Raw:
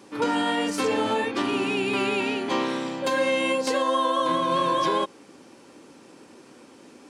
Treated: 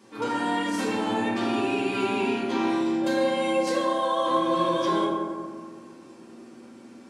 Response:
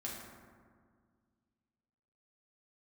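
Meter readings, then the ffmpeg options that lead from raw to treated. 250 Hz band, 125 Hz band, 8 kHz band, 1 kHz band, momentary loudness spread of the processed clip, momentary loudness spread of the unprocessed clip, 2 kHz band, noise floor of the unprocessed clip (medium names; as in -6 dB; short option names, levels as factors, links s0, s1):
+2.0 dB, +0.5 dB, -4.0 dB, -1.5 dB, 7 LU, 3 LU, -3.5 dB, -51 dBFS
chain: -filter_complex "[1:a]atrim=start_sample=2205[s0];[0:a][s0]afir=irnorm=-1:irlink=0,volume=0.841"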